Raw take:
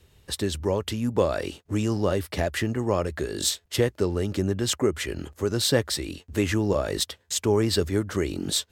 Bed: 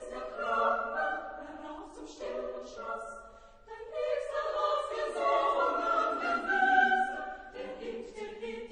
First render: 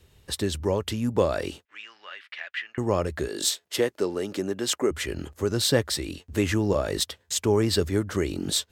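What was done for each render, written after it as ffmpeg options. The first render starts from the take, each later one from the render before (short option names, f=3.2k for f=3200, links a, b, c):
-filter_complex "[0:a]asettb=1/sr,asplit=3[a][b][c];[a]atrim=end=1.654[d];[b]atrim=start=1.65:end=2.78,asetpts=PTS-STARTPTS,afade=t=in:d=0.004:c=qsin,afade=t=out:st=1.126:d=0.004:c=qsin,asuperpass=centerf=2200:order=4:qfactor=1.3[e];[c]atrim=start=2.776[f];[d][e]acrossfade=d=0.004:c1=hsin:c2=qsin[g];[g][f]acrossfade=d=0.004:c1=qsin:c2=hsin,asettb=1/sr,asplit=3[h][i][j];[h]atrim=end=3.284[k];[i]atrim=start=3.28:end=4.91,asetpts=PTS-STARTPTS,afade=t=in:d=0.004:c=qsin,afade=t=out:st=1.626:d=0.004:c=qsin,highpass=260[l];[j]atrim=start=4.906[m];[k][l]acrossfade=d=0.004:c1=hsin:c2=qsin[n];[n][m]acrossfade=d=0.004:c1=qsin:c2=hsin"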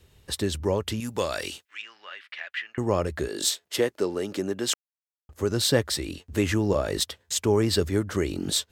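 -filter_complex "[0:a]asettb=1/sr,asplit=3[a][b][c];[a]atrim=end=1.004[d];[b]atrim=start=1:end=1.82,asetpts=PTS-STARTPTS,afade=t=in:d=0.004:c=qsin,afade=t=out:st=0.816:d=0.004:c=qsin,tiltshelf=f=1.3k:g=-8[e];[c]atrim=start=1.816[f];[d][e]acrossfade=d=0.004:c1=hsin:c2=qsin[g];[g][f]acrossfade=d=0.004:c1=qsin:c2=hsin,asplit=3[h][i][j];[h]atrim=end=4.74,asetpts=PTS-STARTPTS,afade=t=out:st=4.736:d=0.004:c=hsin[k];[i]atrim=start=4.74:end=5.29,asetpts=PTS-STARTPTS,volume=0[l];[j]atrim=start=5.29,asetpts=PTS-STARTPTS,afade=t=in:d=0.004:c=hsin[m];[k][l][m]concat=n=3:v=0:a=1"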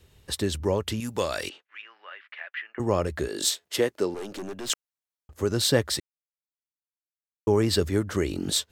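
-filter_complex "[0:a]asettb=1/sr,asplit=3[a][b][c];[a]atrim=end=1.494[d];[b]atrim=start=1.49:end=2.8,asetpts=PTS-STARTPTS,afade=t=in:d=0.004:c=qsin,afade=t=out:st=1.306:d=0.004:c=qsin,highpass=370,lowpass=2.2k[e];[c]atrim=start=2.796[f];[d][e]acrossfade=d=0.004:c1=hsin:c2=qsin[g];[g][f]acrossfade=d=0.004:c1=qsin:c2=hsin,asettb=1/sr,asplit=3[h][i][j];[h]atrim=end=4.144[k];[i]atrim=start=4.14:end=4.7,asetpts=PTS-STARTPTS,afade=t=in:d=0.004:c=qsin,afade=t=out:st=0.556:d=0.004:c=qsin,aeval=exprs='(tanh(39.8*val(0)+0.45)-tanh(0.45))/39.8':c=same[l];[j]atrim=start=4.696[m];[k][l]acrossfade=d=0.004:c1=hsin:c2=qsin[n];[n][m]acrossfade=d=0.004:c1=qsin:c2=hsin,asplit=3[o][p][q];[o]atrim=end=6,asetpts=PTS-STARTPTS,afade=t=out:st=5.996:d=0.004:c=hsin[r];[p]atrim=start=6:end=7.47,asetpts=PTS-STARTPTS,volume=0[s];[q]atrim=start=7.47,asetpts=PTS-STARTPTS,afade=t=in:d=0.004:c=hsin[t];[r][s][t]concat=n=3:v=0:a=1"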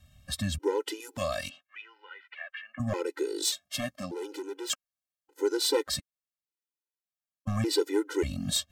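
-af "volume=16dB,asoftclip=hard,volume=-16dB,afftfilt=real='re*gt(sin(2*PI*0.85*pts/sr)*(1-2*mod(floor(b*sr/1024/260),2)),0)':imag='im*gt(sin(2*PI*0.85*pts/sr)*(1-2*mod(floor(b*sr/1024/260),2)),0)':win_size=1024:overlap=0.75"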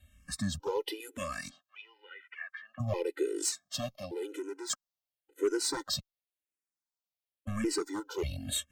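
-filter_complex "[0:a]asoftclip=type=hard:threshold=-21dB,asplit=2[a][b];[b]afreqshift=-0.94[c];[a][c]amix=inputs=2:normalize=1"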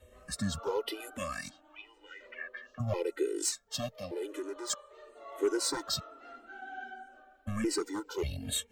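-filter_complex "[1:a]volume=-19dB[a];[0:a][a]amix=inputs=2:normalize=0"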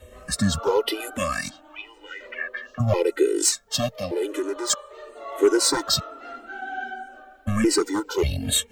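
-af "volume=11.5dB"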